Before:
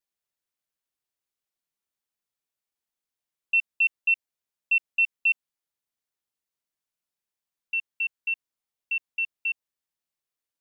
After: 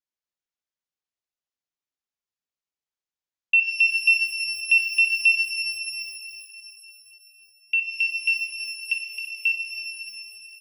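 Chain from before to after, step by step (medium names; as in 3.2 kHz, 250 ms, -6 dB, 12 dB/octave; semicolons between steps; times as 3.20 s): gate -42 dBFS, range -14 dB; in parallel at +1.5 dB: level held to a coarse grid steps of 18 dB; on the sum: resampled via 16 kHz; 8.93–9.35 s: compressor with a negative ratio -33 dBFS, ratio -1; pitch-shifted reverb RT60 3.3 s, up +12 st, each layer -8 dB, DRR 3.5 dB; trim +3.5 dB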